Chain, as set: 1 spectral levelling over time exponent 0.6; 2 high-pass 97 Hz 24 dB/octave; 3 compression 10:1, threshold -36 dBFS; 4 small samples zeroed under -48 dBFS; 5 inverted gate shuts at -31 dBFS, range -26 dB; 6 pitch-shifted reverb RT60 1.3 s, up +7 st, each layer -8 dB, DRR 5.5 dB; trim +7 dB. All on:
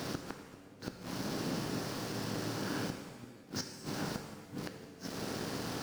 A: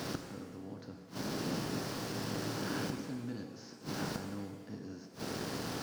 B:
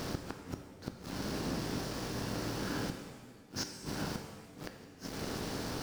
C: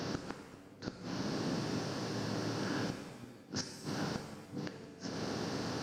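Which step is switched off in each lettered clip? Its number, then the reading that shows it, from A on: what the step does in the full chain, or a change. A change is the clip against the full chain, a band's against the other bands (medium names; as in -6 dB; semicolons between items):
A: 3, mean gain reduction 5.5 dB; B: 2, momentary loudness spread change +1 LU; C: 4, distortion -14 dB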